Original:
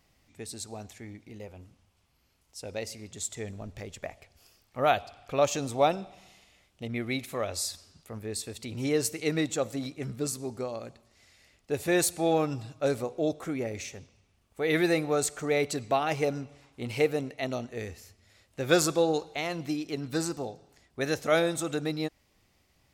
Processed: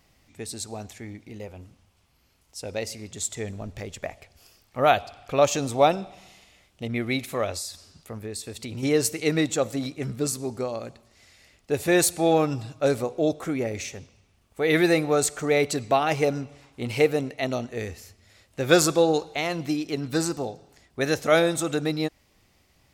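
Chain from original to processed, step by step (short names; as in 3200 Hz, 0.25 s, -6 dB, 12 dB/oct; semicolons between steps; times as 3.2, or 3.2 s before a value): 7.51–8.83 compressor 6:1, threshold -36 dBFS, peak gain reduction 7.5 dB; gain +5 dB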